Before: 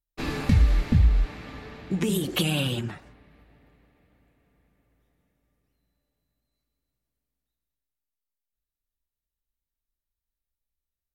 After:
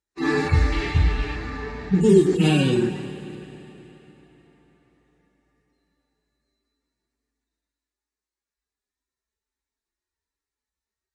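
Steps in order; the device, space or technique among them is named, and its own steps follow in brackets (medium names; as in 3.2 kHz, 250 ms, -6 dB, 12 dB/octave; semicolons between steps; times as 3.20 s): harmonic-percussive separation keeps harmonic; 0.72–1.36 s: peaking EQ 3 kHz +13.5 dB 0.57 oct; car door speaker (cabinet simulation 100–8400 Hz, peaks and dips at 110 Hz -9 dB, 380 Hz +9 dB, 590 Hz -6 dB, 940 Hz +3 dB, 1.8 kHz +5 dB, 3.1 kHz -8 dB); Schroeder reverb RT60 3.4 s, combs from 33 ms, DRR 10.5 dB; trim +9 dB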